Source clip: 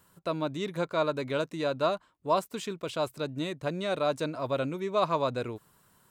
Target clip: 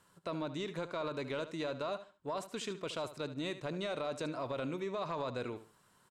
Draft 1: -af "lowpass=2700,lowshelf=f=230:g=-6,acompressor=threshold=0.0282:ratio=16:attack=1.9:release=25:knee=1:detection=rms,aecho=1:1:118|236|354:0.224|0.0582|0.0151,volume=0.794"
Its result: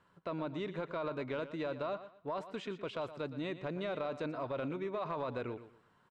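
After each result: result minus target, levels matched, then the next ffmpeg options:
8 kHz band -16.0 dB; echo 45 ms late
-af "lowpass=8600,lowshelf=f=230:g=-6,acompressor=threshold=0.0282:ratio=16:attack=1.9:release=25:knee=1:detection=rms,aecho=1:1:118|236|354:0.224|0.0582|0.0151,volume=0.794"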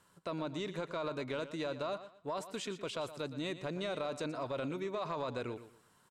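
echo 45 ms late
-af "lowpass=8600,lowshelf=f=230:g=-6,acompressor=threshold=0.0282:ratio=16:attack=1.9:release=25:knee=1:detection=rms,aecho=1:1:73|146|219:0.224|0.0582|0.0151,volume=0.794"

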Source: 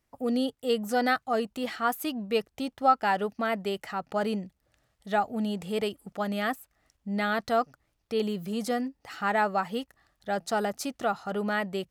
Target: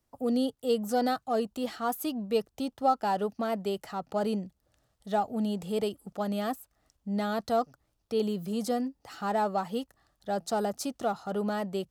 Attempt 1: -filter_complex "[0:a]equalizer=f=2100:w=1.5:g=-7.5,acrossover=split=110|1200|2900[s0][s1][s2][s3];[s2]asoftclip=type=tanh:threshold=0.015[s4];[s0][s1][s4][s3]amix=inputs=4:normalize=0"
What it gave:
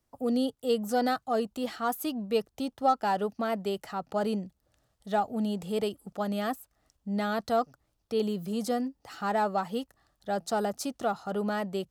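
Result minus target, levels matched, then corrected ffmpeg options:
saturation: distortion -5 dB
-filter_complex "[0:a]equalizer=f=2100:w=1.5:g=-7.5,acrossover=split=110|1200|2900[s0][s1][s2][s3];[s2]asoftclip=type=tanh:threshold=0.00473[s4];[s0][s1][s4][s3]amix=inputs=4:normalize=0"

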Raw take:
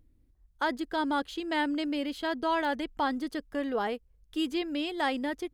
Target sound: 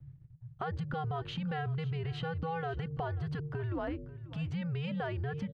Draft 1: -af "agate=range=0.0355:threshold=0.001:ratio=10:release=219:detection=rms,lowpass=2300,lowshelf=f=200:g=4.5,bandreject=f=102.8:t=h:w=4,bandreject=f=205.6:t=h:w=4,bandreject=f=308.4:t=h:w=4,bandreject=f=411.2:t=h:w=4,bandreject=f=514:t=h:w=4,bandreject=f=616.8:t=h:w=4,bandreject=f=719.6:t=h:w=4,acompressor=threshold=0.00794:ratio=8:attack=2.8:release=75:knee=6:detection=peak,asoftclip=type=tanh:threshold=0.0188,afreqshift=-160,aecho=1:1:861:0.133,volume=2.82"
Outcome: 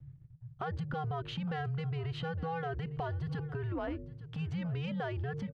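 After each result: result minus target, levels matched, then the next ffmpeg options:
echo 321 ms late; saturation: distortion +18 dB
-af "agate=range=0.0355:threshold=0.001:ratio=10:release=219:detection=rms,lowpass=2300,lowshelf=f=200:g=4.5,bandreject=f=102.8:t=h:w=4,bandreject=f=205.6:t=h:w=4,bandreject=f=308.4:t=h:w=4,bandreject=f=411.2:t=h:w=4,bandreject=f=514:t=h:w=4,bandreject=f=616.8:t=h:w=4,bandreject=f=719.6:t=h:w=4,acompressor=threshold=0.00794:ratio=8:attack=2.8:release=75:knee=6:detection=peak,asoftclip=type=tanh:threshold=0.0188,afreqshift=-160,aecho=1:1:540:0.133,volume=2.82"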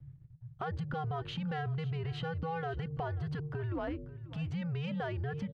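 saturation: distortion +18 dB
-af "agate=range=0.0355:threshold=0.001:ratio=10:release=219:detection=rms,lowpass=2300,lowshelf=f=200:g=4.5,bandreject=f=102.8:t=h:w=4,bandreject=f=205.6:t=h:w=4,bandreject=f=308.4:t=h:w=4,bandreject=f=411.2:t=h:w=4,bandreject=f=514:t=h:w=4,bandreject=f=616.8:t=h:w=4,bandreject=f=719.6:t=h:w=4,acompressor=threshold=0.00794:ratio=8:attack=2.8:release=75:knee=6:detection=peak,asoftclip=type=tanh:threshold=0.0562,afreqshift=-160,aecho=1:1:540:0.133,volume=2.82"

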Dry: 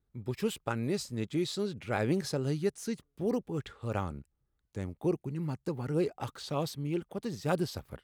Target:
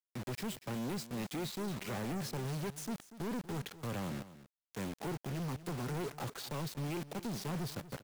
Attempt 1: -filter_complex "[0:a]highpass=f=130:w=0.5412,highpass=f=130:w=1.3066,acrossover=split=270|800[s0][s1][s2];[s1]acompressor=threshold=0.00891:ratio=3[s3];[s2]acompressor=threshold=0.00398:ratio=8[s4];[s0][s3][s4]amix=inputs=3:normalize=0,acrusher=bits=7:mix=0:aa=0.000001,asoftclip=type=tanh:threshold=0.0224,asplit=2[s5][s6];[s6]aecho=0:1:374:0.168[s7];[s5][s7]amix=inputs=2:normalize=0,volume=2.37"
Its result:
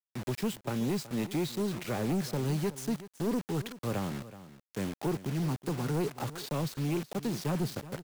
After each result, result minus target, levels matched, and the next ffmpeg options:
echo 136 ms late; saturation: distortion -7 dB
-filter_complex "[0:a]highpass=f=130:w=0.5412,highpass=f=130:w=1.3066,acrossover=split=270|800[s0][s1][s2];[s1]acompressor=threshold=0.00891:ratio=3[s3];[s2]acompressor=threshold=0.00398:ratio=8[s4];[s0][s3][s4]amix=inputs=3:normalize=0,acrusher=bits=7:mix=0:aa=0.000001,asoftclip=type=tanh:threshold=0.0224,asplit=2[s5][s6];[s6]aecho=0:1:238:0.168[s7];[s5][s7]amix=inputs=2:normalize=0,volume=2.37"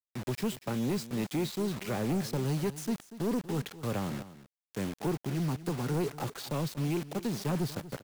saturation: distortion -7 dB
-filter_complex "[0:a]highpass=f=130:w=0.5412,highpass=f=130:w=1.3066,acrossover=split=270|800[s0][s1][s2];[s1]acompressor=threshold=0.00891:ratio=3[s3];[s2]acompressor=threshold=0.00398:ratio=8[s4];[s0][s3][s4]amix=inputs=3:normalize=0,acrusher=bits=7:mix=0:aa=0.000001,asoftclip=type=tanh:threshold=0.00668,asplit=2[s5][s6];[s6]aecho=0:1:238:0.168[s7];[s5][s7]amix=inputs=2:normalize=0,volume=2.37"

